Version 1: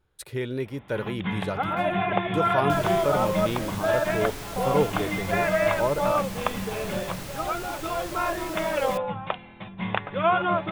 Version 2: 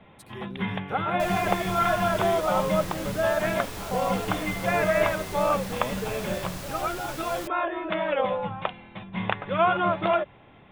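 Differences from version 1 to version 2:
speech -11.0 dB; first sound: entry -0.65 s; second sound: entry -1.50 s

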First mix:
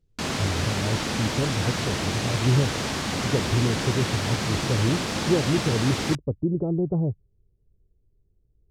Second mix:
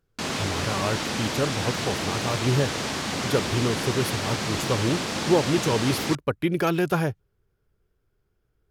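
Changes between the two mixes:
speech: remove Gaussian blur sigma 15 samples; master: add low shelf 110 Hz -9 dB

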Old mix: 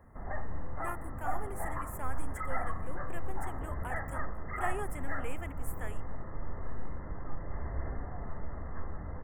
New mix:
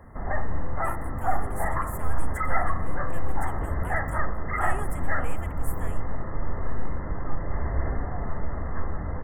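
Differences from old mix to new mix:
background +9.5 dB; master: add bell 13000 Hz +6 dB 2 oct

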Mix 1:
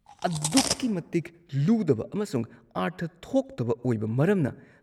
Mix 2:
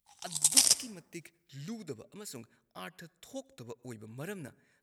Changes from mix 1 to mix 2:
background +4.5 dB; master: add pre-emphasis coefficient 0.9

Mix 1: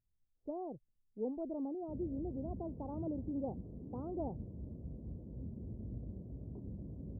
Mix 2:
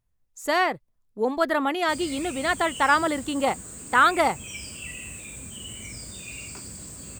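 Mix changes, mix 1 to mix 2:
speech +8.5 dB; master: remove Gaussian blur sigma 17 samples

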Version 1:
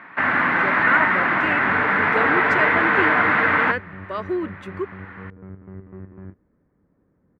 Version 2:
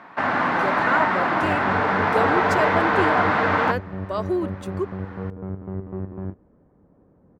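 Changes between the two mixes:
second sound +7.5 dB; master: add EQ curve 310 Hz 0 dB, 760 Hz +5 dB, 2000 Hz -9 dB, 4800 Hz +8 dB, 9100 Hz +13 dB

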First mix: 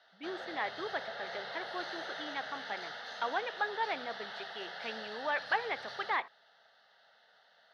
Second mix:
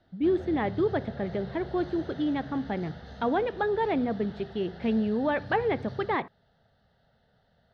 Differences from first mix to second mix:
background -9.5 dB; master: remove HPF 1000 Hz 12 dB/oct

